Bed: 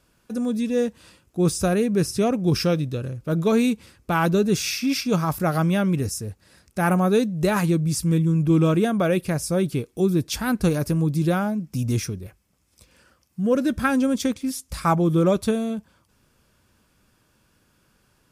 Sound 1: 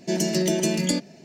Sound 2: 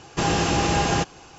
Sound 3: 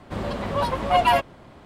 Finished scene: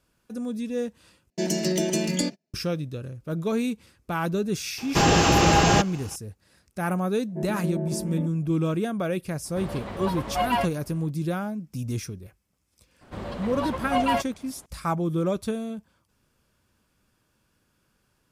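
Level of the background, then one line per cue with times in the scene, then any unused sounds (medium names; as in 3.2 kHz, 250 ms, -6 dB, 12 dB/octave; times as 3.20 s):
bed -6.5 dB
1.30 s: replace with 1 -2 dB + gate -41 dBFS, range -33 dB
4.78 s: add 2 + waveshaping leveller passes 1
7.28 s: add 1 -8 dB + inverse Chebyshev low-pass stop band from 5.3 kHz, stop band 70 dB
9.45 s: add 3 -6.5 dB
13.01 s: add 3 -6 dB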